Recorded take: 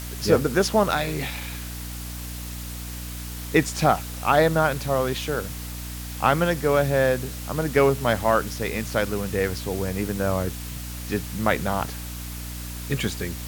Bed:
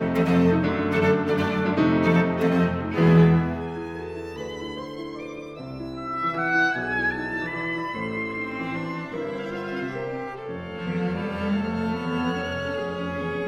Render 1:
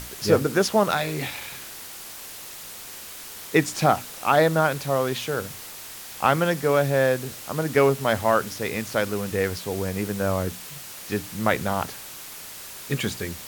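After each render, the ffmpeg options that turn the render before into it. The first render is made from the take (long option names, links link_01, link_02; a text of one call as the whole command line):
ffmpeg -i in.wav -af "bandreject=frequency=60:width_type=h:width=6,bandreject=frequency=120:width_type=h:width=6,bandreject=frequency=180:width_type=h:width=6,bandreject=frequency=240:width_type=h:width=6,bandreject=frequency=300:width_type=h:width=6" out.wav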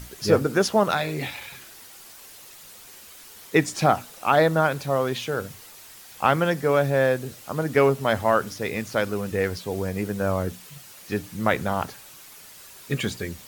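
ffmpeg -i in.wav -af "afftdn=noise_reduction=8:noise_floor=-40" out.wav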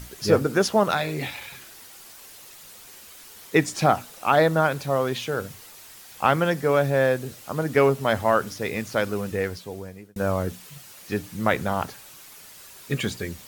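ffmpeg -i in.wav -filter_complex "[0:a]asplit=2[link_01][link_02];[link_01]atrim=end=10.16,asetpts=PTS-STARTPTS,afade=type=out:start_time=9.22:duration=0.94[link_03];[link_02]atrim=start=10.16,asetpts=PTS-STARTPTS,afade=type=in:duration=0.004:curve=hsin[link_04];[link_03][link_04]concat=n=2:v=0:a=1" out.wav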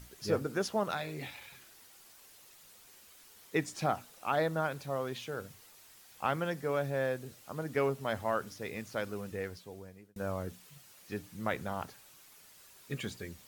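ffmpeg -i in.wav -af "volume=-12dB" out.wav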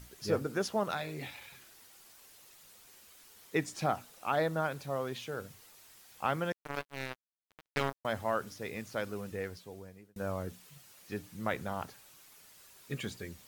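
ffmpeg -i in.wav -filter_complex "[0:a]asettb=1/sr,asplit=3[link_01][link_02][link_03];[link_01]atrim=end=6.524[link_04];[link_02]atrim=start=6.52:end=8.05,asetpts=PTS-STARTPTS,afade=type=in:duration=0.004:curve=qsin,afade=type=out:start_time=1.526:duration=0.004:curve=qsin,acrusher=bits=3:mix=0:aa=0.5[link_05];[link_03]atrim=start=8.046[link_06];[link_04][link_05]acrossfade=duration=0.004:curve1=hsin:curve2=qsin[link_07];[link_07][link_06]acrossfade=duration=0.004:curve1=qsin:curve2=hsin" out.wav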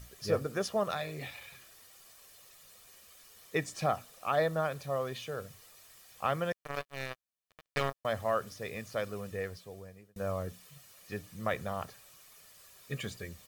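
ffmpeg -i in.wav -af "aecho=1:1:1.7:0.41" out.wav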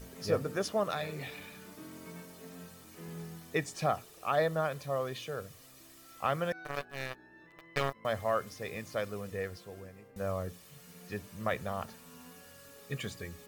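ffmpeg -i in.wav -i bed.wav -filter_complex "[1:a]volume=-28.5dB[link_01];[0:a][link_01]amix=inputs=2:normalize=0" out.wav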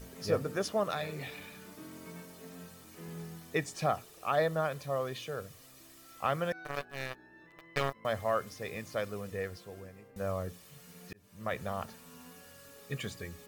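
ffmpeg -i in.wav -filter_complex "[0:a]asplit=2[link_01][link_02];[link_01]atrim=end=11.13,asetpts=PTS-STARTPTS,afade=type=out:start_time=11.126:duration=0.004:curve=hsin[link_03];[link_02]atrim=start=11.13,asetpts=PTS-STARTPTS,afade=type=in:duration=0.51[link_04];[link_03][link_04]concat=n=2:v=0:a=1" out.wav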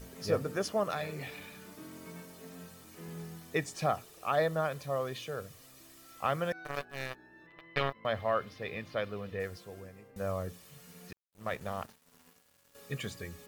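ffmpeg -i in.wav -filter_complex "[0:a]asettb=1/sr,asplit=3[link_01][link_02][link_03];[link_01]atrim=end=0.574[link_04];[link_02]atrim=start=0.57:end=1.34,asetpts=PTS-STARTPTS,afade=type=in:duration=0.004:curve=qsin,afade=type=out:start_time=0.766:duration=0.004:curve=qsin,bandreject=frequency=3700:width=12[link_05];[link_03]atrim=start=1.336[link_06];[link_04][link_05]acrossfade=duration=0.004:curve1=hsin:curve2=qsin[link_07];[link_07][link_06]acrossfade=duration=0.004:curve1=qsin:curve2=hsin,asplit=3[link_08][link_09][link_10];[link_08]afade=type=out:start_time=7.46:duration=0.02[link_11];[link_09]highshelf=frequency=5100:width_type=q:width=1.5:gain=-12.5,afade=type=in:start_time=7.46:duration=0.02,afade=type=out:start_time=9.39:duration=0.02[link_12];[link_10]afade=type=in:start_time=9.39:duration=0.02[link_13];[link_11][link_12][link_13]amix=inputs=3:normalize=0,asettb=1/sr,asplit=3[link_14][link_15][link_16];[link_14]atrim=end=11.114[link_17];[link_15]atrim=start=11.11:end=12.75,asetpts=PTS-STARTPTS,afade=type=in:duration=0.004:curve=qsin,afade=type=out:start_time=1.636:duration=0.004:curve=qsin,aeval=exprs='sgn(val(0))*max(abs(val(0))-0.00299,0)':channel_layout=same[link_18];[link_16]atrim=start=12.746[link_19];[link_17][link_18]acrossfade=duration=0.004:curve1=hsin:curve2=qsin[link_20];[link_20][link_19]acrossfade=duration=0.004:curve1=qsin:curve2=hsin" out.wav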